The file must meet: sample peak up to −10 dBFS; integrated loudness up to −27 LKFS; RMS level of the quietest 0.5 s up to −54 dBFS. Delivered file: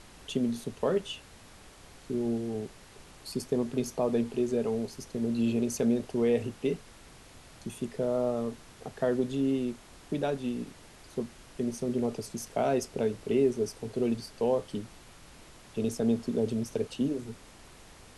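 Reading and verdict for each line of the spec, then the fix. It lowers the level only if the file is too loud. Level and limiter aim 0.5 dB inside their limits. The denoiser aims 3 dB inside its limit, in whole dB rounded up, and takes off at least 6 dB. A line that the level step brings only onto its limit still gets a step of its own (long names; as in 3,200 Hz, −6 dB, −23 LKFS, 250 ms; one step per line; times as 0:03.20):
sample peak −15.0 dBFS: in spec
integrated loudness −31.5 LKFS: in spec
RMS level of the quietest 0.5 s −52 dBFS: out of spec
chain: broadband denoise 6 dB, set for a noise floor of −52 dBFS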